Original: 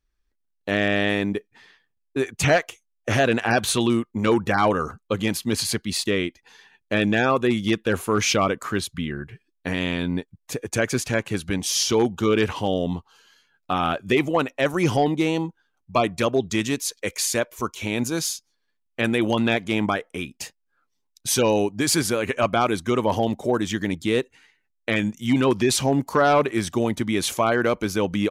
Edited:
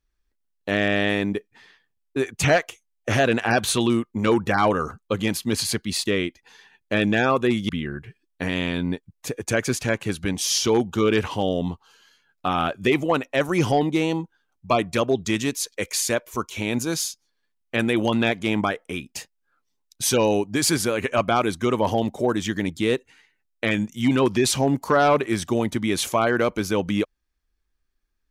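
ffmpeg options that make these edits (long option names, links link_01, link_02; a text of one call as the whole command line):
ffmpeg -i in.wav -filter_complex "[0:a]asplit=2[link_01][link_02];[link_01]atrim=end=7.692[link_03];[link_02]atrim=start=8.938[link_04];[link_03][link_04]acrossfade=duration=0.004:curve1=hsin:curve2=hsin" out.wav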